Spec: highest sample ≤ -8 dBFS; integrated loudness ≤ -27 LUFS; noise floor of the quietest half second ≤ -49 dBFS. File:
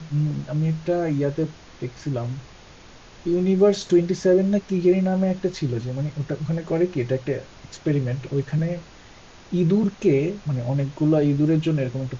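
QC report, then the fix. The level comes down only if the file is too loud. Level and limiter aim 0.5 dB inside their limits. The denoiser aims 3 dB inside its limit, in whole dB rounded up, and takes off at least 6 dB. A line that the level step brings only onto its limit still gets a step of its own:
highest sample -6.5 dBFS: fail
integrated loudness -23.0 LUFS: fail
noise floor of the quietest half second -46 dBFS: fail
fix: trim -4.5 dB

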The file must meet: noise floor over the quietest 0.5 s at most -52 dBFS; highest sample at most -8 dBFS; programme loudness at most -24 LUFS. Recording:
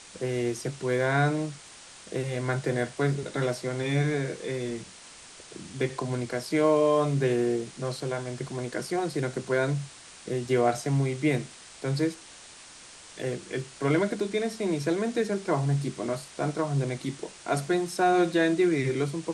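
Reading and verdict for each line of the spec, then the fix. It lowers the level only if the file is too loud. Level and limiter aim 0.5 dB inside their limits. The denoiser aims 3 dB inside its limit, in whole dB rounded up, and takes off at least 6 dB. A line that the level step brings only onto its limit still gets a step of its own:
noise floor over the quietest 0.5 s -48 dBFS: fail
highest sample -12.0 dBFS: pass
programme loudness -28.0 LUFS: pass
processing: noise reduction 7 dB, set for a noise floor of -48 dBFS

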